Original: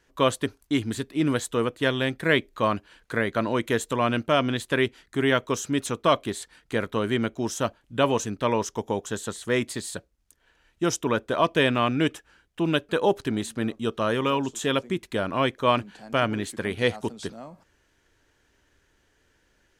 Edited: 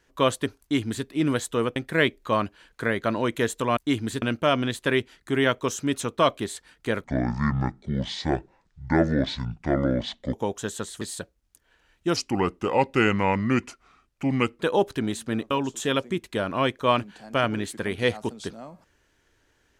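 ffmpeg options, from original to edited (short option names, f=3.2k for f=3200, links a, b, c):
-filter_complex "[0:a]asplit=10[a][b][c][d][e][f][g][h][i][j];[a]atrim=end=1.762[k];[b]atrim=start=2.068:end=4.082[l];[c]atrim=start=0.608:end=1.062[m];[d]atrim=start=4.078:end=6.904[n];[e]atrim=start=6.9:end=8.81,asetpts=PTS-STARTPTS,asetrate=25578,aresample=44100[o];[f]atrim=start=8.806:end=9.492[p];[g]atrim=start=9.768:end=10.924[q];[h]atrim=start=10.92:end=12.9,asetpts=PTS-STARTPTS,asetrate=35721,aresample=44100[r];[i]atrim=start=12.896:end=13.802[s];[j]atrim=start=14.298[t];[k][l]acrossfade=d=0.004:c1=hsin:c2=hsin[u];[u][m]acrossfade=d=0.004:c1=hsin:c2=hsin[v];[v][n]acrossfade=d=0.004:c1=hsin:c2=hsin[w];[w][o]acrossfade=d=0.004:c1=hsin:c2=hsin[x];[x][p]acrossfade=d=0.004:c1=hsin:c2=hsin[y];[y][q]acrossfade=d=0.004:c1=hsin:c2=hsin[z];[z][r]acrossfade=d=0.004:c1=hsin:c2=hsin[aa];[aa][s]acrossfade=d=0.004:c1=hsin:c2=hsin[ab];[ab][t]acrossfade=d=0.004:c1=hsin:c2=hsin"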